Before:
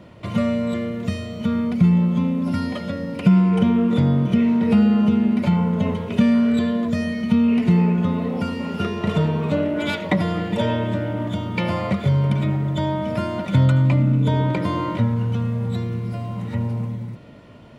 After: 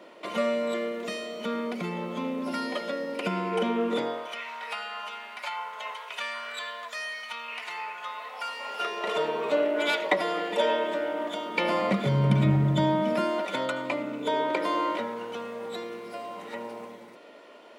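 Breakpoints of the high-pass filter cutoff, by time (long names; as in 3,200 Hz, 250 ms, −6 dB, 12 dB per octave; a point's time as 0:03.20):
high-pass filter 24 dB per octave
0:03.97 330 Hz
0:04.43 880 Hz
0:08.34 880 Hz
0:09.27 380 Hz
0:11.44 380 Hz
0:12.58 98 Hz
0:13.47 370 Hz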